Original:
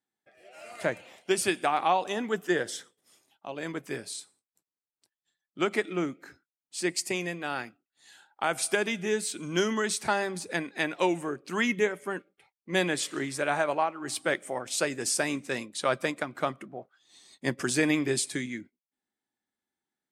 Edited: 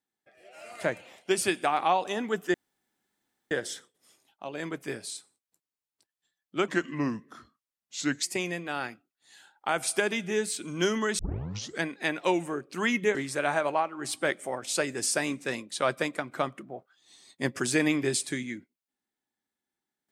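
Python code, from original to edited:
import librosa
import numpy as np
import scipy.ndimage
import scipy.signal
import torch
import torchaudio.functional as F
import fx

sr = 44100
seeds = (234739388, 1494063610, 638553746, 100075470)

y = fx.edit(x, sr, fx.insert_room_tone(at_s=2.54, length_s=0.97),
    fx.speed_span(start_s=5.71, length_s=1.27, speed=0.82),
    fx.tape_start(start_s=9.94, length_s=0.64),
    fx.cut(start_s=11.9, length_s=1.28), tone=tone)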